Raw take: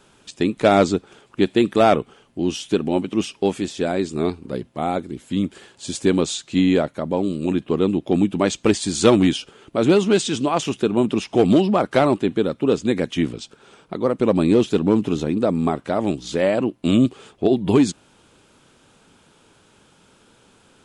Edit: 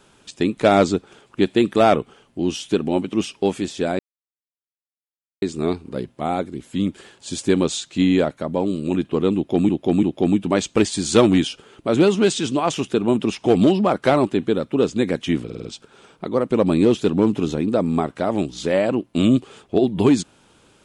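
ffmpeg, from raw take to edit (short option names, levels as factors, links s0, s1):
-filter_complex "[0:a]asplit=8[s0][s1][s2][s3][s4][s5][s6][s7];[s0]atrim=end=3.99,asetpts=PTS-STARTPTS,afade=t=out:st=3.986:d=0.004:c=hsin,apad=pad_dur=1.43[s8];[s1]atrim=start=3.99:end=8.262,asetpts=PTS-STARTPTS,afade=t=in:d=0.004:c=hsin[s9];[s2]atrim=start=7.918:end=8.262[s10];[s3]atrim=start=7.918:end=13.392[s11];[s4]atrim=start=13.338:end=13.392[s12];[s5]atrim=start=13.338:end=13.392[s13];[s6]atrim=start=13.338:end=13.392[s14];[s7]atrim=start=13.338[s15];[s8][s9]concat=n=2:v=0:a=1[s16];[s16][s10]acrossfade=d=0.004:c1=hsin:c2=hsin[s17];[s17][s11]acrossfade=d=0.004:c1=hsin:c2=hsin[s18];[s18][s12]acrossfade=d=0.004:c1=hsin:c2=hsin[s19];[s19][s13]acrossfade=d=0.004:c1=hsin:c2=hsin[s20];[s20][s14]acrossfade=d=0.004:c1=hsin:c2=hsin[s21];[s21][s15]acrossfade=d=0.004:c1=hsin:c2=hsin"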